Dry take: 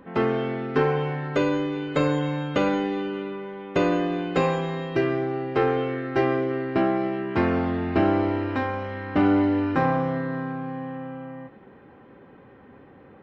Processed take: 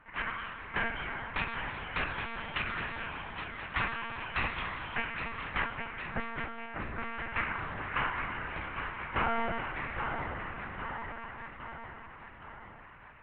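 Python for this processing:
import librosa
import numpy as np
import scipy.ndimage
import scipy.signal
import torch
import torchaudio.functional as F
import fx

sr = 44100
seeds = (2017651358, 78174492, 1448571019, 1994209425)

p1 = fx.envelope_sharpen(x, sr, power=1.5, at=(5.66, 6.97), fade=0.02)
p2 = scipy.signal.sosfilt(scipy.signal.butter(4, 2900.0, 'lowpass', fs=sr, output='sos'), p1)
p3 = fx.spec_gate(p2, sr, threshold_db=-15, keep='weak')
p4 = fx.level_steps(p3, sr, step_db=17)
p5 = p3 + F.gain(torch.from_numpy(p4), -1.5).numpy()
p6 = fx.dynamic_eq(p5, sr, hz=550.0, q=1.5, threshold_db=-48.0, ratio=4.0, max_db=-8)
p7 = p6 + fx.echo_feedback(p6, sr, ms=814, feedback_pct=58, wet_db=-7.0, dry=0)
p8 = fx.lpc_monotone(p7, sr, seeds[0], pitch_hz=230.0, order=8)
y = F.gain(torch.from_numpy(p8), -1.5).numpy()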